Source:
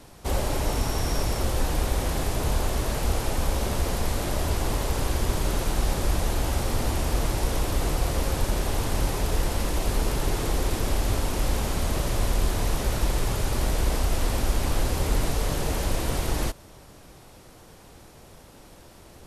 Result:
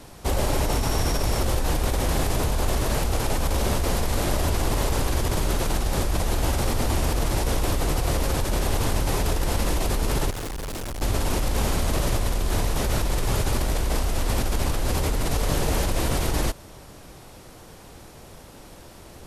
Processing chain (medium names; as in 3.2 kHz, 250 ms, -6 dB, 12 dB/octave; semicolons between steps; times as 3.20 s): in parallel at +2.5 dB: compressor with a negative ratio -25 dBFS, ratio -0.5; 10.30–11.02 s: on the sum: hard clipper -25 dBFS, distortion -17 dB; trim -4.5 dB